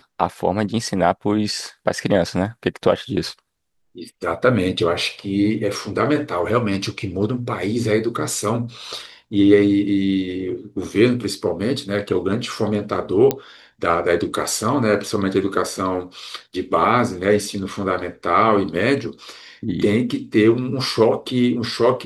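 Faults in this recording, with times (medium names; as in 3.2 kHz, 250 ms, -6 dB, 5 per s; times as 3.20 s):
13.31 s: pop -5 dBFS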